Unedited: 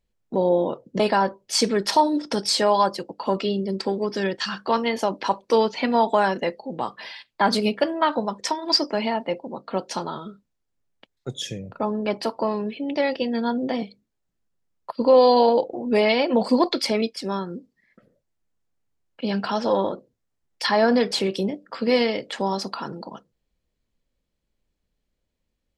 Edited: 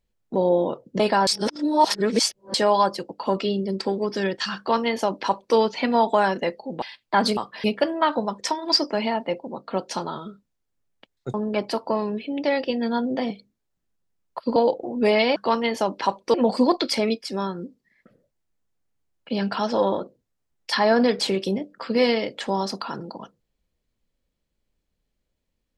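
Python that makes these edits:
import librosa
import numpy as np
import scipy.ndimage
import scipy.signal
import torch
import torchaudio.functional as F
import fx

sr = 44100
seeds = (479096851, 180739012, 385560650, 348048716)

y = fx.edit(x, sr, fx.reverse_span(start_s=1.27, length_s=1.27),
    fx.duplicate(start_s=4.58, length_s=0.98, to_s=16.26),
    fx.move(start_s=6.82, length_s=0.27, to_s=7.64),
    fx.cut(start_s=11.34, length_s=0.52),
    fx.cut(start_s=15.08, length_s=0.38), tone=tone)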